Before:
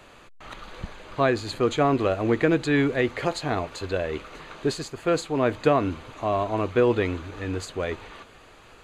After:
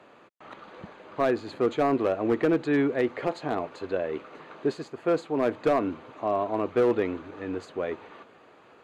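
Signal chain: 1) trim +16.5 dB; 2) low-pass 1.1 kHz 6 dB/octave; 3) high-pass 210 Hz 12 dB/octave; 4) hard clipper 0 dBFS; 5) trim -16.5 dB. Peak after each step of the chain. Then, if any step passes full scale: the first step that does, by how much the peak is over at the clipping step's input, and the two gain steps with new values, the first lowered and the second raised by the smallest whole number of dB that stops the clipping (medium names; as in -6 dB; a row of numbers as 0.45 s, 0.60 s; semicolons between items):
+8.5 dBFS, +7.5 dBFS, +7.5 dBFS, 0.0 dBFS, -16.5 dBFS; step 1, 7.5 dB; step 1 +8.5 dB, step 5 -8.5 dB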